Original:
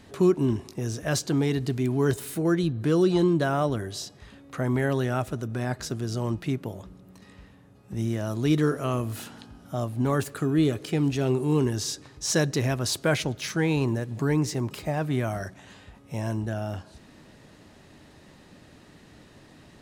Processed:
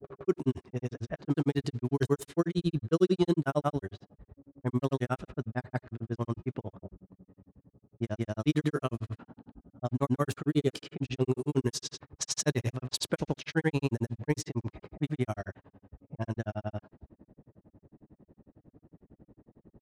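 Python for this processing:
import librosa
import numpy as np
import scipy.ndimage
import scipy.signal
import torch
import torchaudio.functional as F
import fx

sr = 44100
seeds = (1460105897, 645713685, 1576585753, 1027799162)

y = fx.granulator(x, sr, seeds[0], grain_ms=71.0, per_s=11.0, spray_ms=100.0, spread_st=0)
y = fx.env_lowpass(y, sr, base_hz=440.0, full_db=-26.0)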